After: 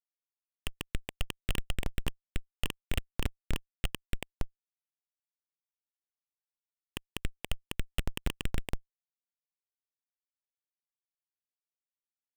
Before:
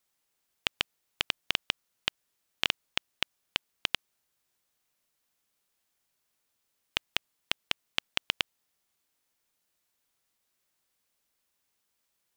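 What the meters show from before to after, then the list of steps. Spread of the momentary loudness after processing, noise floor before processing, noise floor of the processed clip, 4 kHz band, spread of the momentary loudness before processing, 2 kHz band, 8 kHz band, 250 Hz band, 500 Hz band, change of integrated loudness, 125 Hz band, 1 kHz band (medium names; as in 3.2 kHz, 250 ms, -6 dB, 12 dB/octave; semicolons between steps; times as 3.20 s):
9 LU, -79 dBFS, under -85 dBFS, -10.5 dB, 5 LU, -8.0 dB, -0.5 dB, +8.0 dB, +1.5 dB, -6.0 dB, +15.5 dB, -5.5 dB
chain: filtered feedback delay 280 ms, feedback 37%, low-pass 4 kHz, level -12.5 dB; Schmitt trigger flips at -32.5 dBFS; trim +14.5 dB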